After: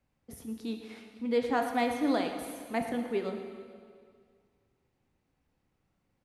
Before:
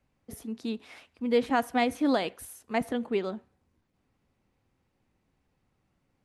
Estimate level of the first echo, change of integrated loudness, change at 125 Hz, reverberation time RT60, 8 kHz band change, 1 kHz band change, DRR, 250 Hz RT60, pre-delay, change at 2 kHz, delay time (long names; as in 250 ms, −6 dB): −13.5 dB, −2.5 dB, −2.5 dB, 2.0 s, −3.0 dB, −2.0 dB, 4.0 dB, 2.0 s, 6 ms, −3.0 dB, 116 ms